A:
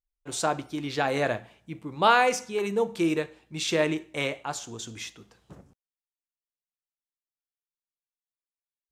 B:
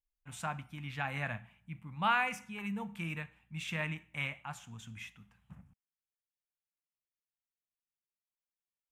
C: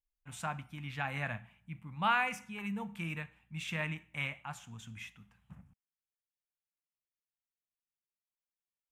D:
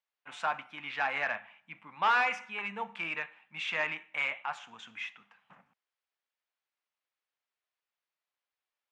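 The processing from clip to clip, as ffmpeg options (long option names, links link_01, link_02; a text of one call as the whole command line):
ffmpeg -i in.wav -af "firequalizer=gain_entry='entry(200,0);entry(350,-26);entry(820,-7);entry(2500,-1);entry(4300,-19);entry(11000,-6)':delay=0.05:min_phase=1,volume=-3dB" out.wav
ffmpeg -i in.wav -af anull out.wav
ffmpeg -i in.wav -filter_complex "[0:a]asplit=2[link_01][link_02];[link_02]highpass=frequency=720:poles=1,volume=17dB,asoftclip=type=tanh:threshold=-17dB[link_03];[link_01][link_03]amix=inputs=2:normalize=0,lowpass=frequency=2400:poles=1,volume=-6dB,highpass=380,lowpass=4800" out.wav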